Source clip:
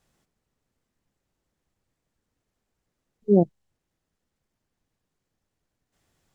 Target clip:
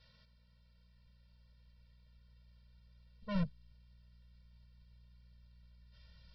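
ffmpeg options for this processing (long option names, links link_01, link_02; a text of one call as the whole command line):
ffmpeg -i in.wav -af "crystalizer=i=8:c=0,aresample=11025,asoftclip=type=tanh:threshold=-32.5dB,aresample=44100,aeval=exprs='val(0)+0.000355*(sin(2*PI*60*n/s)+sin(2*PI*2*60*n/s)/2+sin(2*PI*3*60*n/s)/3+sin(2*PI*4*60*n/s)/4+sin(2*PI*5*60*n/s)/5)':channel_layout=same,asubboost=boost=2.5:cutoff=160,afftfilt=real='re*eq(mod(floor(b*sr/1024/220),2),0)':imag='im*eq(mod(floor(b*sr/1024/220),2),0)':win_size=1024:overlap=0.75,volume=1.5dB" out.wav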